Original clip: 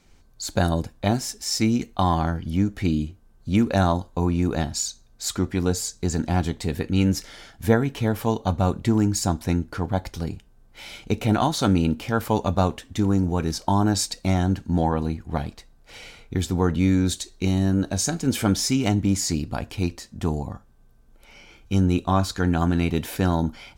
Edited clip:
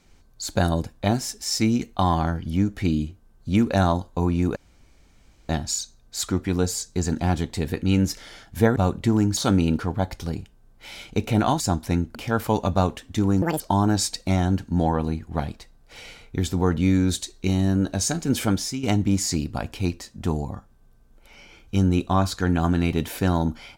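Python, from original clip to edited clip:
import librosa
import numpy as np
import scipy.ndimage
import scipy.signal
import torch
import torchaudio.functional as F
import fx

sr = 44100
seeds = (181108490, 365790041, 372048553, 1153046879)

y = fx.edit(x, sr, fx.insert_room_tone(at_s=4.56, length_s=0.93),
    fx.cut(start_s=7.83, length_s=0.74),
    fx.swap(start_s=9.18, length_s=0.55, other_s=11.54, other_length_s=0.42),
    fx.speed_span(start_s=13.23, length_s=0.35, speed=1.92),
    fx.fade_out_to(start_s=18.4, length_s=0.41, floor_db=-11.5), tone=tone)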